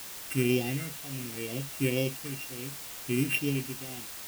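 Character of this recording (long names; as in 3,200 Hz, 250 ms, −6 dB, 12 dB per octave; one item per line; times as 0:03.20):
a buzz of ramps at a fixed pitch in blocks of 16 samples
tremolo triangle 0.71 Hz, depth 90%
phaser sweep stages 4, 2.1 Hz, lowest notch 710–1,500 Hz
a quantiser's noise floor 8 bits, dither triangular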